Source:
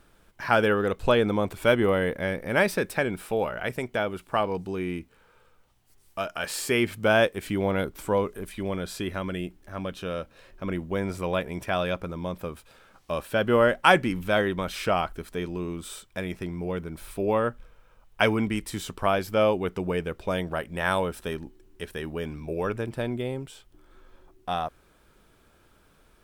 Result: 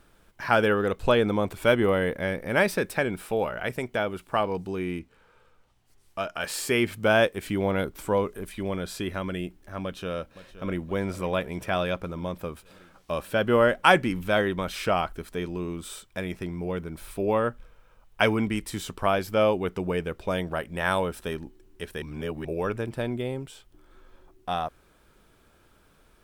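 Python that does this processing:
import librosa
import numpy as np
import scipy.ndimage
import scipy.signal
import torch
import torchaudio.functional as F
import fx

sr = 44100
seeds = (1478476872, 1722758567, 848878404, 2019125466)

y = fx.high_shelf(x, sr, hz=11000.0, db=-11.0, at=(4.99, 6.4))
y = fx.echo_throw(y, sr, start_s=9.83, length_s=1.03, ms=520, feedback_pct=65, wet_db=-15.0)
y = fx.edit(y, sr, fx.reverse_span(start_s=22.02, length_s=0.43), tone=tone)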